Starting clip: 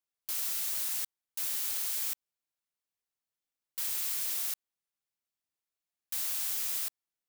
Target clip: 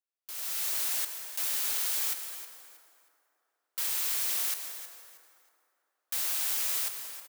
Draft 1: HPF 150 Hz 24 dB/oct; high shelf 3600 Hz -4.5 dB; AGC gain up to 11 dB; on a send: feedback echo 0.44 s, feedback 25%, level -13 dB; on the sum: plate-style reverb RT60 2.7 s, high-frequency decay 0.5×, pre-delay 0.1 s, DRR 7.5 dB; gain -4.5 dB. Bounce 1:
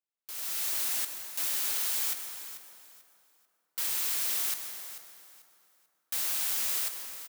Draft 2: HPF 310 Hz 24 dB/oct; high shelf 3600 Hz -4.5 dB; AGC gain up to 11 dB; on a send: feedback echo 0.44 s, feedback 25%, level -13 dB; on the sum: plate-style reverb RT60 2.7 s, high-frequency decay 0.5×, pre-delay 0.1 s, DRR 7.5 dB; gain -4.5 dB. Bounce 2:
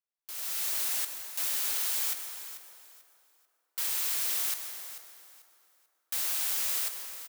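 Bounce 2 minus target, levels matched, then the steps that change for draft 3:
echo 0.123 s late
change: feedback echo 0.317 s, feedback 25%, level -13 dB

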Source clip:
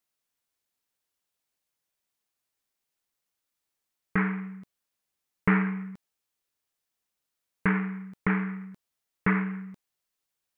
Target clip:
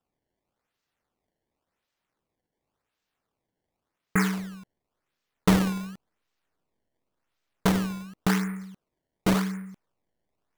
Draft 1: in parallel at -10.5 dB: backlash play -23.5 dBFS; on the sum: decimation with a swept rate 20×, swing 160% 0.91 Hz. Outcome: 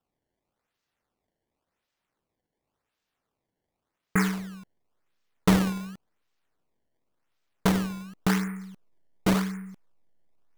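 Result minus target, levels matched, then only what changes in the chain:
backlash: distortion +7 dB
change: backlash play -32 dBFS

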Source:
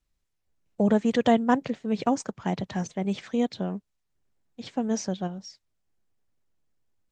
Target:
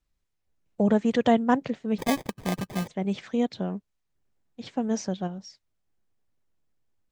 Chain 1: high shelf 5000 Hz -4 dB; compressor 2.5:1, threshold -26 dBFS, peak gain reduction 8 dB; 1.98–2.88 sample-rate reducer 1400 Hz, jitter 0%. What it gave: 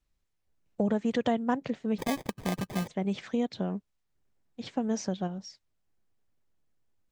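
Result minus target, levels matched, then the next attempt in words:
compressor: peak gain reduction +8 dB
high shelf 5000 Hz -4 dB; 1.98–2.88 sample-rate reducer 1400 Hz, jitter 0%

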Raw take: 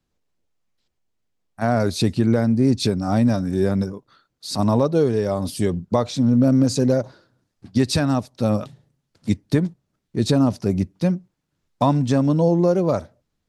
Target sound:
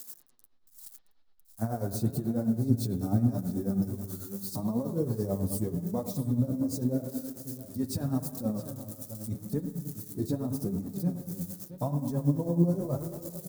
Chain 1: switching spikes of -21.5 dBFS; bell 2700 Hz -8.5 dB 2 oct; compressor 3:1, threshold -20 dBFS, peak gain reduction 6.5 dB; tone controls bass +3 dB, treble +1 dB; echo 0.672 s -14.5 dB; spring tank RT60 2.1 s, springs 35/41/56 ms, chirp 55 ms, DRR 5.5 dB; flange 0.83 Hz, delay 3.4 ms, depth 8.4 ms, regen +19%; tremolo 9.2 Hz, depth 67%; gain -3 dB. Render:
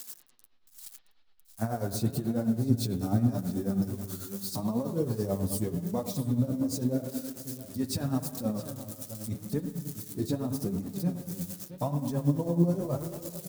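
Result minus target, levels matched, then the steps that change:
2000 Hz band +6.0 dB
change: bell 2700 Hz -19 dB 2 oct

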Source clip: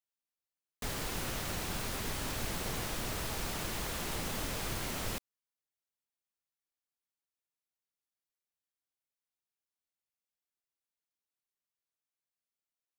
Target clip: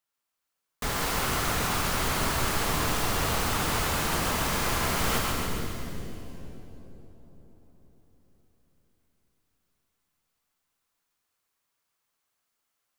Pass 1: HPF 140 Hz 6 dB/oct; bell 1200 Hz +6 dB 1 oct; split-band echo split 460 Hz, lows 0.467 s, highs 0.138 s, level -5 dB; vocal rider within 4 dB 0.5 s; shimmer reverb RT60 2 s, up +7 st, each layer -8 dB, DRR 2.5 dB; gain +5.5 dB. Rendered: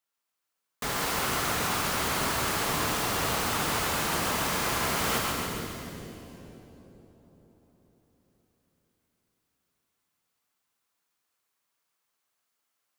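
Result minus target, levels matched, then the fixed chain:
125 Hz band -4.0 dB
bell 1200 Hz +6 dB 1 oct; split-band echo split 460 Hz, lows 0.467 s, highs 0.138 s, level -5 dB; vocal rider within 4 dB 0.5 s; shimmer reverb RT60 2 s, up +7 st, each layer -8 dB, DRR 2.5 dB; gain +5.5 dB

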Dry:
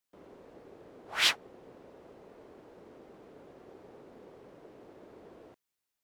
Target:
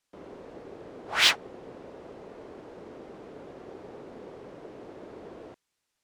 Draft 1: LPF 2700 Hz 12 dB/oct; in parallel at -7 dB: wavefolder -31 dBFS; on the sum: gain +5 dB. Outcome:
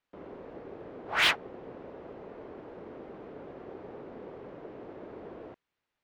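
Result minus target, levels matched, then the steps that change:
2000 Hz band +10.5 dB
change: LPF 8900 Hz 12 dB/oct

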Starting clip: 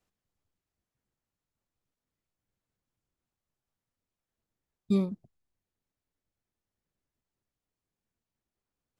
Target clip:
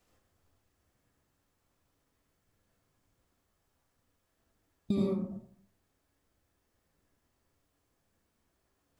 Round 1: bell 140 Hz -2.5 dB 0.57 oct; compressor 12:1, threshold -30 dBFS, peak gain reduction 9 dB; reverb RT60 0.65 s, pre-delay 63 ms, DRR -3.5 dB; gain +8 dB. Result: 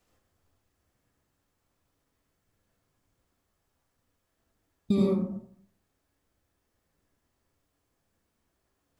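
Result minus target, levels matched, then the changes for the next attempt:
compressor: peak gain reduction -6 dB
change: compressor 12:1, threshold -36.5 dBFS, peak gain reduction 15 dB

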